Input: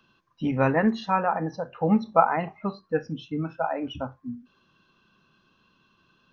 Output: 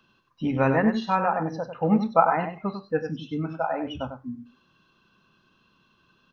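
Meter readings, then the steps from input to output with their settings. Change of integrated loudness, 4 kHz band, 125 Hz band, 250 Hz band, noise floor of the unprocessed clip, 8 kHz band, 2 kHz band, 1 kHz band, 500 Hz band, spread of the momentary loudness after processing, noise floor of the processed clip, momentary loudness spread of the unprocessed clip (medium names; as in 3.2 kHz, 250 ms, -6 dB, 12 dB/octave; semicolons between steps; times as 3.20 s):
+0.5 dB, +0.5 dB, +0.5 dB, +0.5 dB, -66 dBFS, no reading, +0.5 dB, +0.5 dB, +1.0 dB, 13 LU, -65 dBFS, 13 LU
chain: delay 97 ms -8 dB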